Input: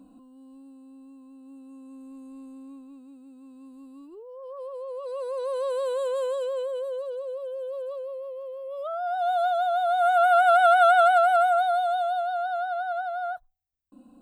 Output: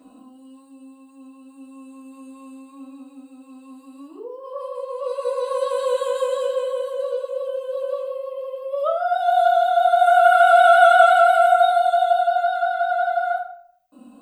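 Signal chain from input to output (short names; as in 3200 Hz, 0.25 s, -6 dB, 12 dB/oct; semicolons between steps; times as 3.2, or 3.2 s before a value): in parallel at -2 dB: compressor, threshold -31 dBFS, peak gain reduction 15.5 dB; on the sum: HPF 500 Hz 6 dB/oct; reverb RT60 0.65 s, pre-delay 3 ms, DRR -5.5 dB; gain -1.5 dB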